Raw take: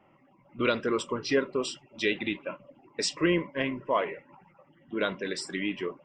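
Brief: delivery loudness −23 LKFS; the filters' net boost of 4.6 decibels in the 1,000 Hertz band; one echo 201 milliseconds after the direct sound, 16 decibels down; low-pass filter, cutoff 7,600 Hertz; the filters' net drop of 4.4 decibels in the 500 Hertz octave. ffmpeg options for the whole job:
ffmpeg -i in.wav -af "lowpass=7600,equalizer=frequency=500:width_type=o:gain=-7.5,equalizer=frequency=1000:width_type=o:gain=7,aecho=1:1:201:0.158,volume=7.5dB" out.wav

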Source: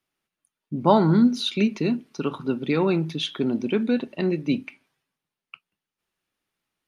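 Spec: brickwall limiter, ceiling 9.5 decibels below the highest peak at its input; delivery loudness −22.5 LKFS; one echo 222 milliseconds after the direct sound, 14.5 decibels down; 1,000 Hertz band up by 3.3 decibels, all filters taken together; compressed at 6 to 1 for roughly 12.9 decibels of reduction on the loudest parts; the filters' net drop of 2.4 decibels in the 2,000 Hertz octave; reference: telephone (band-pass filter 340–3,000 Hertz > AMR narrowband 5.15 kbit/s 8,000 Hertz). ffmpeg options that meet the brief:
ffmpeg -i in.wav -af "equalizer=frequency=1000:width_type=o:gain=4.5,equalizer=frequency=2000:width_type=o:gain=-3,acompressor=threshold=-25dB:ratio=6,alimiter=level_in=0.5dB:limit=-24dB:level=0:latency=1,volume=-0.5dB,highpass=340,lowpass=3000,aecho=1:1:222:0.188,volume=17dB" -ar 8000 -c:a libopencore_amrnb -b:a 5150 out.amr

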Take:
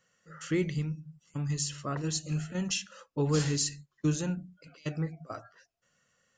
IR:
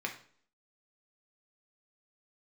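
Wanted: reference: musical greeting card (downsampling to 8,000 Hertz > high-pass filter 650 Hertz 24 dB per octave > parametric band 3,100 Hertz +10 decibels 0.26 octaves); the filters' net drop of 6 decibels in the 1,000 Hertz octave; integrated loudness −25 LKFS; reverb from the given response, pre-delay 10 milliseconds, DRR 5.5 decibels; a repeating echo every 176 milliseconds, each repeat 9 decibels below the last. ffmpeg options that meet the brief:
-filter_complex "[0:a]equalizer=frequency=1000:width_type=o:gain=-8,aecho=1:1:176|352|528|704:0.355|0.124|0.0435|0.0152,asplit=2[link_01][link_02];[1:a]atrim=start_sample=2205,adelay=10[link_03];[link_02][link_03]afir=irnorm=-1:irlink=0,volume=-9dB[link_04];[link_01][link_04]amix=inputs=2:normalize=0,aresample=8000,aresample=44100,highpass=frequency=650:width=0.5412,highpass=frequency=650:width=1.3066,equalizer=frequency=3100:width_type=o:width=0.26:gain=10,volume=15dB"

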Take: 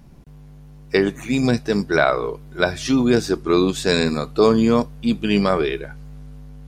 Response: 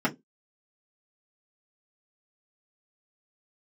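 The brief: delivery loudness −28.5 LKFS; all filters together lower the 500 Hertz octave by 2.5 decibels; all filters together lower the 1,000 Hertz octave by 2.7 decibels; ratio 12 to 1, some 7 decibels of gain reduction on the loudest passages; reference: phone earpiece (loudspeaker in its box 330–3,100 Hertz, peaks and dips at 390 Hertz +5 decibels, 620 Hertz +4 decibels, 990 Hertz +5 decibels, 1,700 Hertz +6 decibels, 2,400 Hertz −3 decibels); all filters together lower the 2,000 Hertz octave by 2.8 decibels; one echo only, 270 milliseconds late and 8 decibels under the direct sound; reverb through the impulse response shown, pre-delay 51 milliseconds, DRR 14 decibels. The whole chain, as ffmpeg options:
-filter_complex "[0:a]equalizer=frequency=500:width_type=o:gain=-5.5,equalizer=frequency=1000:width_type=o:gain=-4,equalizer=frequency=2000:width_type=o:gain=-6,acompressor=threshold=-21dB:ratio=12,aecho=1:1:270:0.398,asplit=2[link_01][link_02];[1:a]atrim=start_sample=2205,adelay=51[link_03];[link_02][link_03]afir=irnorm=-1:irlink=0,volume=-25.5dB[link_04];[link_01][link_04]amix=inputs=2:normalize=0,highpass=330,equalizer=frequency=390:width_type=q:width=4:gain=5,equalizer=frequency=620:width_type=q:width=4:gain=4,equalizer=frequency=990:width_type=q:width=4:gain=5,equalizer=frequency=1700:width_type=q:width=4:gain=6,equalizer=frequency=2400:width_type=q:width=4:gain=-3,lowpass=frequency=3100:width=0.5412,lowpass=frequency=3100:width=1.3066,volume=-0.5dB"

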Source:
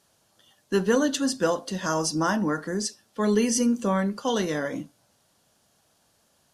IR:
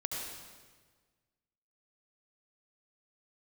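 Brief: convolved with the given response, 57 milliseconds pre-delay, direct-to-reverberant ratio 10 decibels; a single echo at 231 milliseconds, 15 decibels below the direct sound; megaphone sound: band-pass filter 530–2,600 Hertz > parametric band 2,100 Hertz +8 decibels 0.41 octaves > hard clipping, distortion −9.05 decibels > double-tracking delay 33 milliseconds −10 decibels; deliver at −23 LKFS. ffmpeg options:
-filter_complex "[0:a]aecho=1:1:231:0.178,asplit=2[link_01][link_02];[1:a]atrim=start_sample=2205,adelay=57[link_03];[link_02][link_03]afir=irnorm=-1:irlink=0,volume=-13dB[link_04];[link_01][link_04]amix=inputs=2:normalize=0,highpass=530,lowpass=2600,equalizer=frequency=2100:width_type=o:width=0.41:gain=8,asoftclip=type=hard:threshold=-26.5dB,asplit=2[link_05][link_06];[link_06]adelay=33,volume=-10dB[link_07];[link_05][link_07]amix=inputs=2:normalize=0,volume=9dB"

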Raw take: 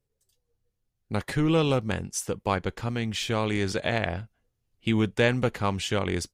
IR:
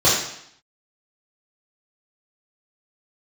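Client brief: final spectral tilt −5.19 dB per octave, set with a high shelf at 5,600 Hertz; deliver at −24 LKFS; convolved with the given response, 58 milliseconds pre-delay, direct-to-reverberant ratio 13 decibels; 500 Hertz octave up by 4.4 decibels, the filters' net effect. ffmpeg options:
-filter_complex "[0:a]equalizer=frequency=500:width_type=o:gain=5,highshelf=frequency=5600:gain=3.5,asplit=2[link_01][link_02];[1:a]atrim=start_sample=2205,adelay=58[link_03];[link_02][link_03]afir=irnorm=-1:irlink=0,volume=-34dB[link_04];[link_01][link_04]amix=inputs=2:normalize=0,volume=0.5dB"

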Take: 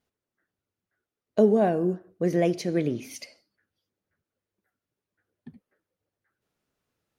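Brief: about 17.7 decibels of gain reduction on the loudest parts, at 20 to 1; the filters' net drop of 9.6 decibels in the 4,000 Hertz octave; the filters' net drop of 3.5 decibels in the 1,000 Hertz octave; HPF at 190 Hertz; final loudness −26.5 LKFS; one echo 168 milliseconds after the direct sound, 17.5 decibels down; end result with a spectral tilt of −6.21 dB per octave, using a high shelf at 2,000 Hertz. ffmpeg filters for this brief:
ffmpeg -i in.wav -af "highpass=190,equalizer=frequency=1000:width_type=o:gain=-4.5,highshelf=frequency=2000:gain=-8,equalizer=frequency=4000:width_type=o:gain=-4,acompressor=threshold=-33dB:ratio=20,aecho=1:1:168:0.133,volume=13.5dB" out.wav

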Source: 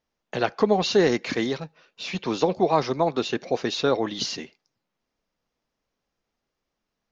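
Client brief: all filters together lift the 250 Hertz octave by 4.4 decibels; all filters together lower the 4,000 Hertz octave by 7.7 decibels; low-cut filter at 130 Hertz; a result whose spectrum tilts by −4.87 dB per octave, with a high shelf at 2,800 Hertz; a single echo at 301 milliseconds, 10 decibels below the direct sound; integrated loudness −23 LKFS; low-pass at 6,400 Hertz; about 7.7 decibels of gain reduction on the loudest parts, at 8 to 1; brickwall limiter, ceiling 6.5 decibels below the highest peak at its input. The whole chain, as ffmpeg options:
ffmpeg -i in.wav -af "highpass=130,lowpass=6400,equalizer=frequency=250:width_type=o:gain=6.5,highshelf=frequency=2800:gain=-4.5,equalizer=frequency=4000:width_type=o:gain=-5,acompressor=threshold=-20dB:ratio=8,alimiter=limit=-17.5dB:level=0:latency=1,aecho=1:1:301:0.316,volume=6.5dB" out.wav

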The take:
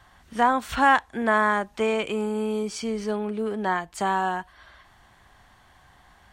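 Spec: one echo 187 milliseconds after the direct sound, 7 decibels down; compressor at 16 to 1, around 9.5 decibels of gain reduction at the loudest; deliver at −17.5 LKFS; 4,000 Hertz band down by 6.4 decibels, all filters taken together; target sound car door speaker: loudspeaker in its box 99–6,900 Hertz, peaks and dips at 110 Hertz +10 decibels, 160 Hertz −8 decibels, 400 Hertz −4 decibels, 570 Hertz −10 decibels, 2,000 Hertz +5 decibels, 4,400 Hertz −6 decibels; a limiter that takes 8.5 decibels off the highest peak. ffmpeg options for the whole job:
ffmpeg -i in.wav -af "equalizer=frequency=4000:width_type=o:gain=-8.5,acompressor=threshold=-23dB:ratio=16,alimiter=limit=-22.5dB:level=0:latency=1,highpass=99,equalizer=frequency=110:width_type=q:width=4:gain=10,equalizer=frequency=160:width_type=q:width=4:gain=-8,equalizer=frequency=400:width_type=q:width=4:gain=-4,equalizer=frequency=570:width_type=q:width=4:gain=-10,equalizer=frequency=2000:width_type=q:width=4:gain=5,equalizer=frequency=4400:width_type=q:width=4:gain=-6,lowpass=frequency=6900:width=0.5412,lowpass=frequency=6900:width=1.3066,aecho=1:1:187:0.447,volume=15.5dB" out.wav

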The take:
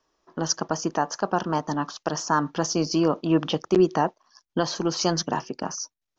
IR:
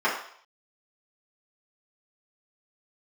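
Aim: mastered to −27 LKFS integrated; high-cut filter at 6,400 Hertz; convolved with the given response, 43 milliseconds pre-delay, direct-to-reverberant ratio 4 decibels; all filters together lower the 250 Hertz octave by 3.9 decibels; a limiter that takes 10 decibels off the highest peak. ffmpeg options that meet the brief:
-filter_complex "[0:a]lowpass=6400,equalizer=frequency=250:width_type=o:gain=-6.5,alimiter=limit=-20dB:level=0:latency=1,asplit=2[link_01][link_02];[1:a]atrim=start_sample=2205,adelay=43[link_03];[link_02][link_03]afir=irnorm=-1:irlink=0,volume=-20dB[link_04];[link_01][link_04]amix=inputs=2:normalize=0,volume=4.5dB"

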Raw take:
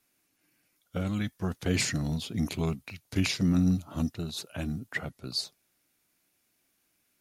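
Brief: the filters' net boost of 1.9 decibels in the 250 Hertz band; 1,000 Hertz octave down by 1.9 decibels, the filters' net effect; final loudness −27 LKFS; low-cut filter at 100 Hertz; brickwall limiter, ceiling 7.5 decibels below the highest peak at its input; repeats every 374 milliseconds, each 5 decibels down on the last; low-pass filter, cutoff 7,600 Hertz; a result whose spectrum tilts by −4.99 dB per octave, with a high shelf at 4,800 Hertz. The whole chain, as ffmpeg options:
ffmpeg -i in.wav -af "highpass=100,lowpass=7600,equalizer=frequency=250:width_type=o:gain=3,equalizer=frequency=1000:width_type=o:gain=-3,highshelf=frequency=4800:gain=3.5,alimiter=limit=-21dB:level=0:latency=1,aecho=1:1:374|748|1122|1496|1870|2244|2618:0.562|0.315|0.176|0.0988|0.0553|0.031|0.0173,volume=4.5dB" out.wav

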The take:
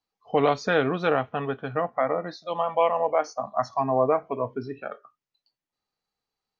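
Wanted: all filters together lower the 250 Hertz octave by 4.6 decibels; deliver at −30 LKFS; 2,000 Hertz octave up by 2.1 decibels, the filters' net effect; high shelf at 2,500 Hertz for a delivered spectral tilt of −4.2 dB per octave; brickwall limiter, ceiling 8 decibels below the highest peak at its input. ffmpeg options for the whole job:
ffmpeg -i in.wav -af "equalizer=frequency=250:width_type=o:gain=-6,equalizer=frequency=2000:width_type=o:gain=5.5,highshelf=frequency=2500:gain=-5.5,volume=0.5dB,alimiter=limit=-17dB:level=0:latency=1" out.wav

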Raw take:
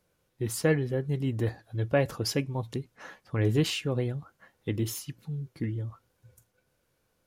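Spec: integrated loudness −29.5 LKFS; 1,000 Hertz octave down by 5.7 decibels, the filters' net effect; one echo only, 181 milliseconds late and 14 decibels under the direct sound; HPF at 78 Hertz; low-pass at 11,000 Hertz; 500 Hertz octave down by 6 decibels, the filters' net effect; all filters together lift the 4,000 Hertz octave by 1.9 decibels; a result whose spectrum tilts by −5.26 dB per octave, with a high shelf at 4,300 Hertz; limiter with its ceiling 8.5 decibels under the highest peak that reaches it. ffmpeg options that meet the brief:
ffmpeg -i in.wav -af "highpass=78,lowpass=11000,equalizer=frequency=500:width_type=o:gain=-6,equalizer=frequency=1000:width_type=o:gain=-5.5,equalizer=frequency=4000:width_type=o:gain=5.5,highshelf=frequency=4300:gain=-4,alimiter=limit=-23dB:level=0:latency=1,aecho=1:1:181:0.2,volume=5.5dB" out.wav

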